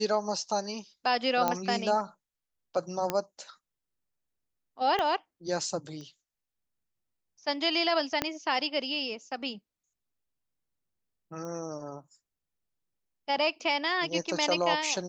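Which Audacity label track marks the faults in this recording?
1.480000	1.480000	pop -12 dBFS
3.100000	3.100000	pop -13 dBFS
4.990000	4.990000	pop -17 dBFS
6.010000	6.010000	pop -33 dBFS
8.220000	8.220000	pop -11 dBFS
11.450000	11.450000	pop -29 dBFS

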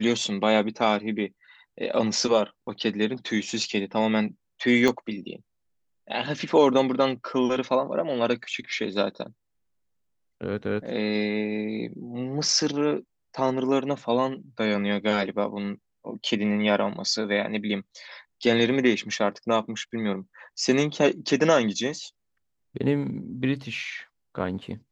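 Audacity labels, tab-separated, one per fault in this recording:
4.880000	4.880000	pop -10 dBFS

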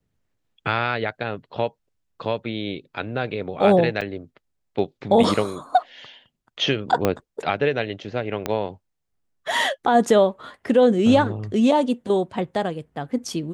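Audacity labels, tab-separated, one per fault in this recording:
4.010000	4.020000	dropout 6.2 ms
7.050000	7.050000	pop -6 dBFS
8.460000	8.460000	pop -9 dBFS

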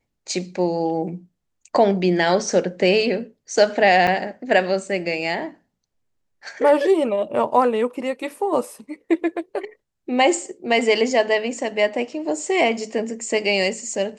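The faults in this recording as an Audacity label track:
4.070000	4.080000	dropout 5.9 ms

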